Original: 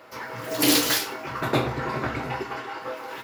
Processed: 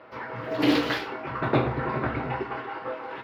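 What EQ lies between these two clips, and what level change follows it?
distance through air 360 m; +1.5 dB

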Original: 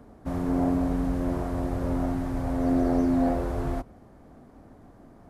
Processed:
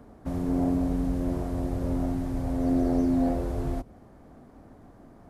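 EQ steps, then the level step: dynamic bell 1.3 kHz, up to -7 dB, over -45 dBFS, Q 0.71; 0.0 dB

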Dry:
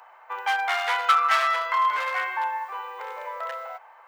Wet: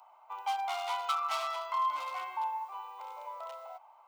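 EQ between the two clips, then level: static phaser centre 460 Hz, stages 6; -6.0 dB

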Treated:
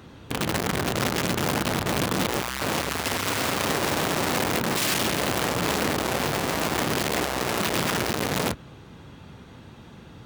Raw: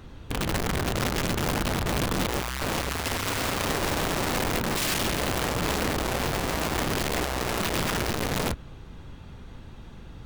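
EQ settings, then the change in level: high-pass 110 Hz 12 dB/octave; +2.5 dB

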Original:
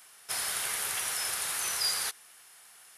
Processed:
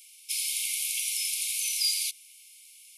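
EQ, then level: brick-wall FIR high-pass 2.1 kHz; +3.0 dB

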